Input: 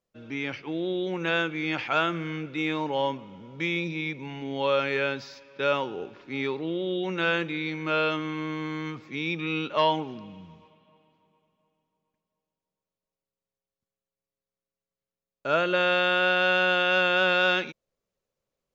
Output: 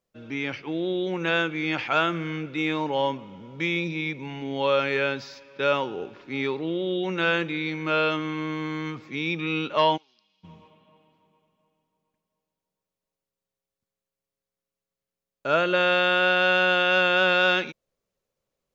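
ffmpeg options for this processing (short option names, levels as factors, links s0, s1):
-filter_complex "[0:a]asplit=3[s0][s1][s2];[s0]afade=t=out:st=9.96:d=0.02[s3];[s1]bandpass=f=4800:t=q:w=4.5:csg=0,afade=t=in:st=9.96:d=0.02,afade=t=out:st=10.43:d=0.02[s4];[s2]afade=t=in:st=10.43:d=0.02[s5];[s3][s4][s5]amix=inputs=3:normalize=0,volume=1.26"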